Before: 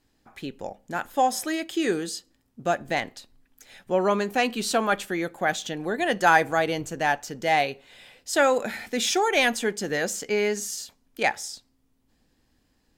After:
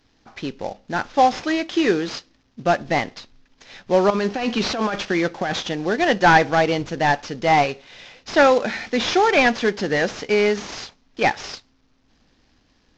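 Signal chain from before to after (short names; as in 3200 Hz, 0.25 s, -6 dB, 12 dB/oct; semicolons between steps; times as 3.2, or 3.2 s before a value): CVSD 32 kbps; 4.1–5.6 negative-ratio compressor -28 dBFS, ratio -1; gain +6.5 dB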